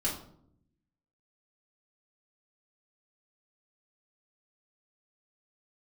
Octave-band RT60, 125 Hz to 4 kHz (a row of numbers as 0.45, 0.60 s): 1.2, 1.1, 0.75, 0.60, 0.45, 0.40 s